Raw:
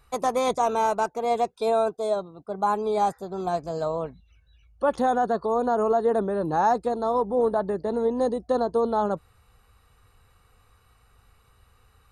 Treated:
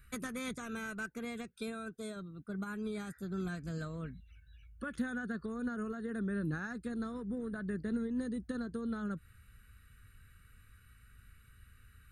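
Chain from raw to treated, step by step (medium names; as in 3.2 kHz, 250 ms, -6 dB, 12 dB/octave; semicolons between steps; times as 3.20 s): compression, threshold -27 dBFS, peak gain reduction 10 dB; FFT filter 230 Hz 0 dB, 880 Hz -29 dB, 1.5 kHz +3 dB, 5.4 kHz -10 dB, 9.6 kHz 0 dB; trim +1 dB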